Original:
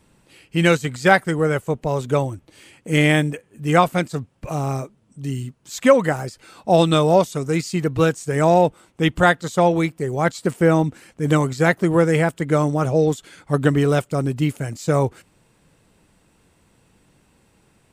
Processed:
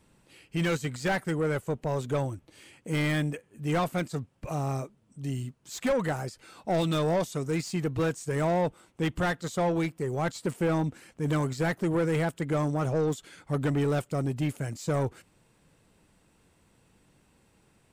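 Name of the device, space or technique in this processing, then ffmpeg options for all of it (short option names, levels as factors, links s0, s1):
saturation between pre-emphasis and de-emphasis: -af "highshelf=f=2000:g=11.5,asoftclip=type=tanh:threshold=0.168,highshelf=f=2000:g=-11.5,volume=0.531"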